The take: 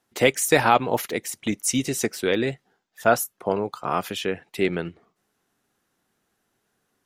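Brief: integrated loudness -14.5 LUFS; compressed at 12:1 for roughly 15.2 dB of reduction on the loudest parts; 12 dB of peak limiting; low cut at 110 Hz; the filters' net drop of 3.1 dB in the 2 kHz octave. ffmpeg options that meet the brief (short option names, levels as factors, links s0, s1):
-af "highpass=110,equalizer=f=2000:t=o:g=-4,acompressor=threshold=0.0398:ratio=12,volume=14.1,alimiter=limit=0.708:level=0:latency=1"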